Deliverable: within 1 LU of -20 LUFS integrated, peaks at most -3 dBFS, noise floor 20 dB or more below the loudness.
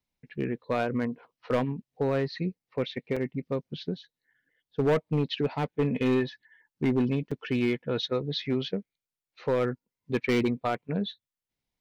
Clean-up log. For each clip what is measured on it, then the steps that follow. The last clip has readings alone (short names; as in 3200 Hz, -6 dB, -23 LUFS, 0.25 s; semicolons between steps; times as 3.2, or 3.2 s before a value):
clipped 1.0%; flat tops at -19.0 dBFS; dropouts 2; longest dropout 5.0 ms; loudness -30.0 LUFS; peak -19.0 dBFS; loudness target -20.0 LUFS
-> clip repair -19 dBFS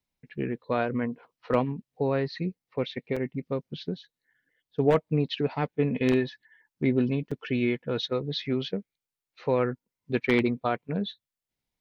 clipped 0.0%; dropouts 2; longest dropout 5.0 ms
-> interpolate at 3.16/7.31, 5 ms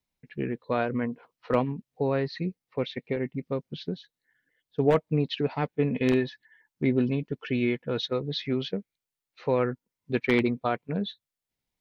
dropouts 0; loudness -29.0 LUFS; peak -10.0 dBFS; loudness target -20.0 LUFS
-> gain +9 dB; limiter -3 dBFS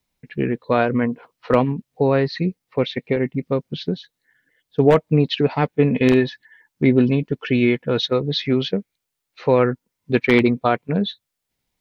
loudness -20.0 LUFS; peak -3.0 dBFS; noise floor -80 dBFS